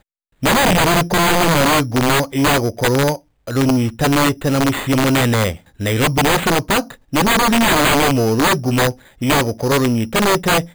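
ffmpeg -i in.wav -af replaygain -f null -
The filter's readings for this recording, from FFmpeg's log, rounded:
track_gain = -2.4 dB
track_peak = 0.207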